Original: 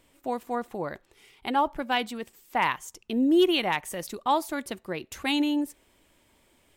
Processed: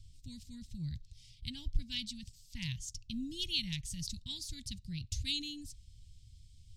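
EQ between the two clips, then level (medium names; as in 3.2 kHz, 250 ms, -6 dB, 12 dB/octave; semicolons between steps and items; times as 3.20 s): elliptic band-stop 110–4700 Hz, stop band 60 dB; tape spacing loss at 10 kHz 25 dB; +17.0 dB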